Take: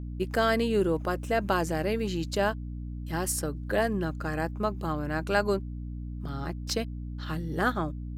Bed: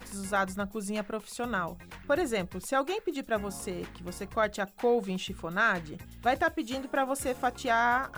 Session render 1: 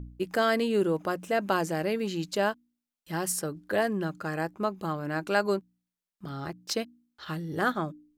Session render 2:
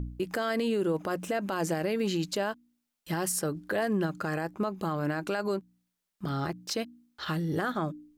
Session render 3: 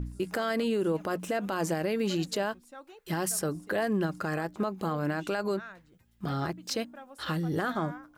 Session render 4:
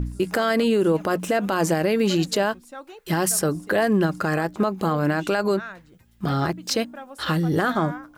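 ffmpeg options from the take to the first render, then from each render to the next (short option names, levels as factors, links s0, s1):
-af "bandreject=f=60:t=h:w=4,bandreject=f=120:t=h:w=4,bandreject=f=180:t=h:w=4,bandreject=f=240:t=h:w=4,bandreject=f=300:t=h:w=4"
-filter_complex "[0:a]asplit=2[s0][s1];[s1]acompressor=threshold=0.0178:ratio=6,volume=1.12[s2];[s0][s2]amix=inputs=2:normalize=0,alimiter=limit=0.0891:level=0:latency=1:release=54"
-filter_complex "[1:a]volume=0.106[s0];[0:a][s0]amix=inputs=2:normalize=0"
-af "volume=2.66"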